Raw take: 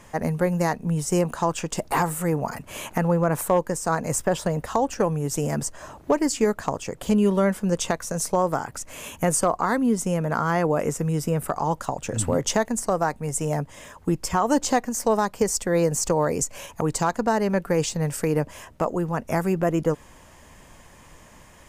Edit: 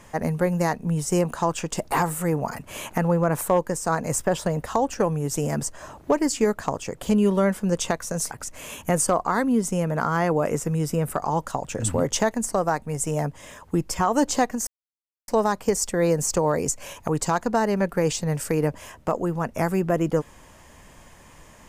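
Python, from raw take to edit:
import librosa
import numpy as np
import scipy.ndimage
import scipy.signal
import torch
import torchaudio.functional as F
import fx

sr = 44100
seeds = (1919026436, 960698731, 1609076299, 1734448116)

y = fx.edit(x, sr, fx.cut(start_s=8.31, length_s=0.34),
    fx.insert_silence(at_s=15.01, length_s=0.61), tone=tone)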